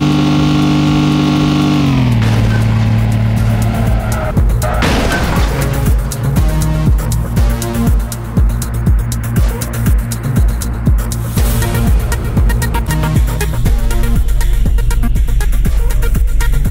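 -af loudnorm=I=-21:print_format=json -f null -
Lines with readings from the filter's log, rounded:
"input_i" : "-14.2",
"input_tp" : "-3.1",
"input_lra" : "3.6",
"input_thresh" : "-24.2",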